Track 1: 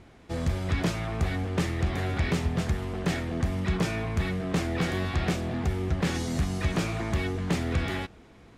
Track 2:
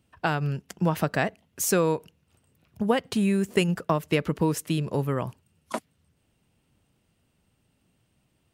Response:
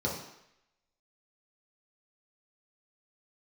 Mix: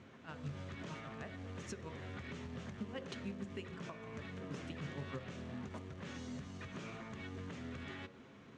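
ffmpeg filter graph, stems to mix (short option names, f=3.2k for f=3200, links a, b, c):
-filter_complex "[0:a]acompressor=threshold=-35dB:ratio=3,alimiter=level_in=9dB:limit=-24dB:level=0:latency=1:release=135,volume=-9dB,volume=-2.5dB,asplit=2[a][b];[b]volume=-16.5dB[c];[1:a]acompressor=threshold=-24dB:ratio=6,aeval=exprs='val(0)*pow(10,-26*(0.5-0.5*cos(2*PI*6.4*n/s))/20)':c=same,volume=-8.5dB,asplit=2[d][e];[e]volume=-17.5dB[f];[2:a]atrim=start_sample=2205[g];[c][f]amix=inputs=2:normalize=0[h];[h][g]afir=irnorm=-1:irlink=0[i];[a][d][i]amix=inputs=3:normalize=0,acrusher=bits=6:mode=log:mix=0:aa=0.000001,highpass=150,equalizer=f=170:t=q:w=4:g=-4,equalizer=f=780:t=q:w=4:g=-6,equalizer=f=5.1k:t=q:w=4:g=-5,lowpass=f=6.4k:w=0.5412,lowpass=f=6.4k:w=1.3066,alimiter=level_in=9dB:limit=-24dB:level=0:latency=1:release=273,volume=-9dB"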